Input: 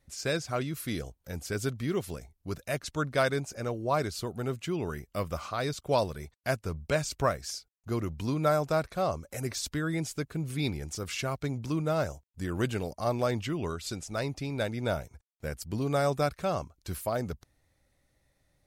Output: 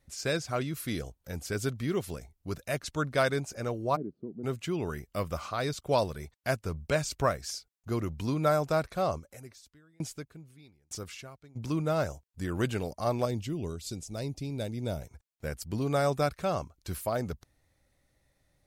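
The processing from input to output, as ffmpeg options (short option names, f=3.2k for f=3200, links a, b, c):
-filter_complex "[0:a]asplit=3[a][b][c];[a]afade=t=out:st=3.95:d=0.02[d];[b]asuperpass=centerf=250:order=4:qfactor=1.3,afade=t=in:st=3.95:d=0.02,afade=t=out:st=4.43:d=0.02[e];[c]afade=t=in:st=4.43:d=0.02[f];[d][e][f]amix=inputs=3:normalize=0,asplit=3[g][h][i];[g]afade=t=out:st=9.18:d=0.02[j];[h]aeval=exprs='val(0)*pow(10,-36*if(lt(mod(1.1*n/s,1),2*abs(1.1)/1000),1-mod(1.1*n/s,1)/(2*abs(1.1)/1000),(mod(1.1*n/s,1)-2*abs(1.1)/1000)/(1-2*abs(1.1)/1000))/20)':c=same,afade=t=in:st=9.18:d=0.02,afade=t=out:st=11.55:d=0.02[k];[i]afade=t=in:st=11.55:d=0.02[l];[j][k][l]amix=inputs=3:normalize=0,asettb=1/sr,asplit=3[m][n][o];[m]atrim=end=13.254[p];[n]atrim=start=13.25:end=15.02,asetpts=PTS-STARTPTS,afade=t=in:d=0.004:c=qsin,afade=t=out:st=1.766:d=0.004:c=qsin,equalizer=f=1.4k:t=o:w=2:g=-14[q];[o]atrim=start=15.016[r];[p][q]acrossfade=d=0.004:c1=hsin:c2=qsin[s];[s][r]acrossfade=d=0.004:c1=qsin:c2=hsin"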